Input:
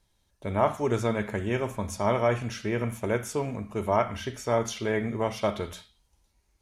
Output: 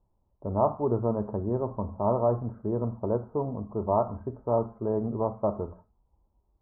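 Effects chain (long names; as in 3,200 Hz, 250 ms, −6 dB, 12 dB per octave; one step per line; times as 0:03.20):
Butterworth low-pass 1,100 Hz 48 dB per octave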